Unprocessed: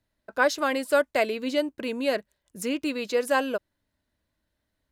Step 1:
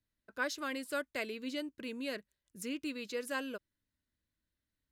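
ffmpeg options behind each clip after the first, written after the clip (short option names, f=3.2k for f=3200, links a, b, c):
-af "equalizer=f=720:t=o:w=1:g=-11.5,volume=-9dB"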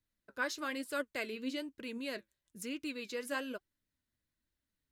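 -af "flanger=delay=1.9:depth=7.6:regen=65:speed=1.1:shape=triangular,volume=4dB"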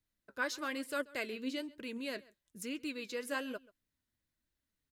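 -filter_complex "[0:a]asplit=2[a][b];[b]adelay=134.1,volume=-22dB,highshelf=f=4k:g=-3.02[c];[a][c]amix=inputs=2:normalize=0"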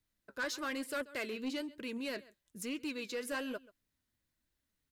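-af "asoftclip=type=tanh:threshold=-33.5dB,volume=2.5dB"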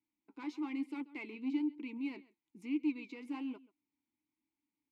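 -filter_complex "[0:a]asplit=3[a][b][c];[a]bandpass=f=300:t=q:w=8,volume=0dB[d];[b]bandpass=f=870:t=q:w=8,volume=-6dB[e];[c]bandpass=f=2.24k:t=q:w=8,volume=-9dB[f];[d][e][f]amix=inputs=3:normalize=0,volume=8.5dB"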